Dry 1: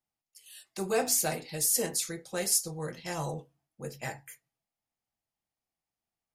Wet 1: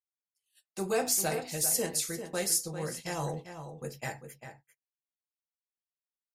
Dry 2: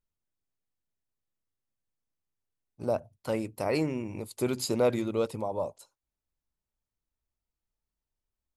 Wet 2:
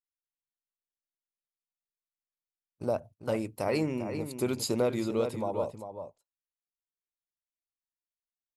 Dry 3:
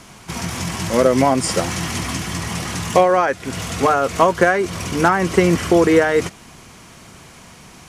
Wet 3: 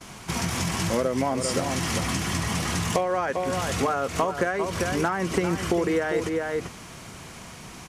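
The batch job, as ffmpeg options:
-filter_complex "[0:a]agate=range=-28dB:threshold=-46dB:ratio=16:detection=peak,asplit=2[a][b];[b]adelay=396.5,volume=-9dB,highshelf=f=4k:g=-8.92[c];[a][c]amix=inputs=2:normalize=0,acompressor=threshold=-23dB:ratio=4"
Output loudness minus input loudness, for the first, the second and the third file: -1.0, -0.5, -8.5 LU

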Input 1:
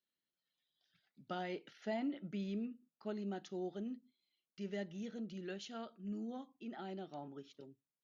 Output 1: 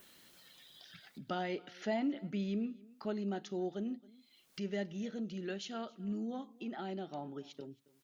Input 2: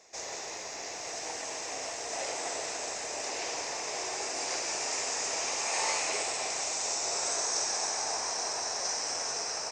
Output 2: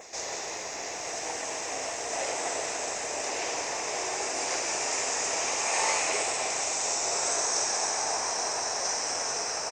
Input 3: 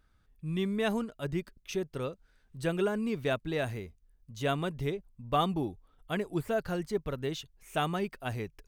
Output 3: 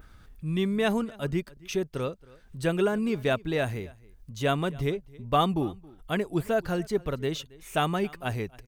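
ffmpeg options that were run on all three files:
-af "adynamicequalizer=threshold=0.00282:dfrequency=4500:dqfactor=2.2:tfrequency=4500:tqfactor=2.2:attack=5:release=100:ratio=0.375:range=2.5:mode=cutabove:tftype=bell,acompressor=mode=upward:threshold=-44dB:ratio=2.5,aecho=1:1:273:0.0708,volume=4.5dB"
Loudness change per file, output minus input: +4.5, +3.0, +4.5 LU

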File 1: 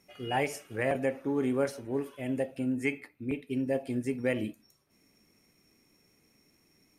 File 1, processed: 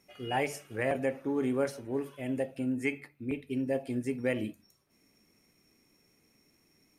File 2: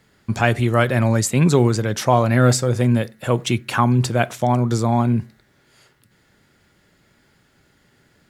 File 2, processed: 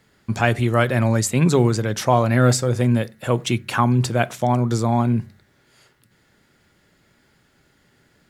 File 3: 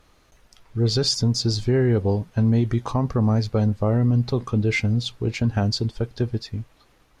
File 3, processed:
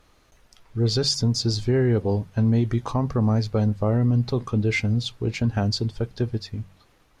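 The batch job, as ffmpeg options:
-af "bandreject=f=47.48:t=h:w=4,bandreject=f=94.96:t=h:w=4,bandreject=f=142.44:t=h:w=4,bandreject=f=189.92:t=h:w=4,volume=-1dB"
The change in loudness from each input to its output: -1.0, -1.0, -1.0 LU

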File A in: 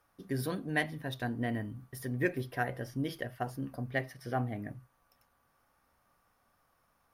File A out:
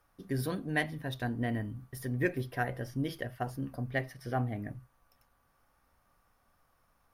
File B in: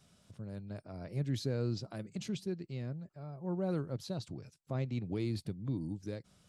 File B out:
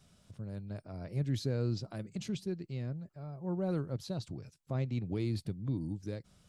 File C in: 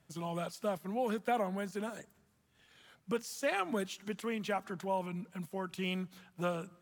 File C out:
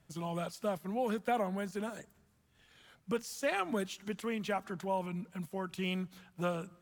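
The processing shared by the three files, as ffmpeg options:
-af "lowshelf=f=62:g=11"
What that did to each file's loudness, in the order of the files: +0.5, +1.5, +0.5 LU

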